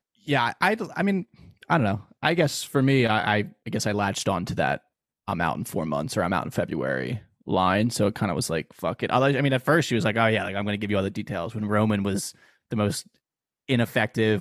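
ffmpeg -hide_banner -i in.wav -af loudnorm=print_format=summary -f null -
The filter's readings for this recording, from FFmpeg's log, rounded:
Input Integrated:    -25.0 LUFS
Input True Peak:      -7.0 dBTP
Input LRA:             3.2 LU
Input Threshold:     -35.3 LUFS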